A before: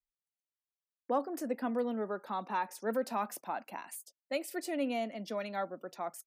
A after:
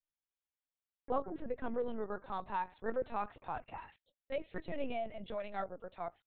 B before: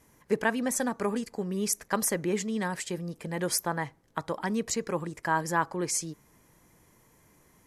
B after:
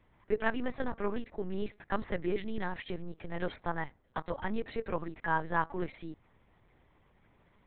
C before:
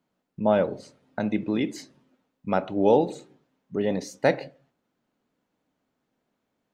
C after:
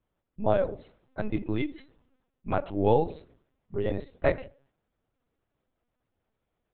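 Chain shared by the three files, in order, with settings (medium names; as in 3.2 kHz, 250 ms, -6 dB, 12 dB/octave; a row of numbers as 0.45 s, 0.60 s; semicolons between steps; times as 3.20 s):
LPC vocoder at 8 kHz pitch kept; trim -3 dB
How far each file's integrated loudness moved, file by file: -4.0 LU, -6.0 LU, -4.0 LU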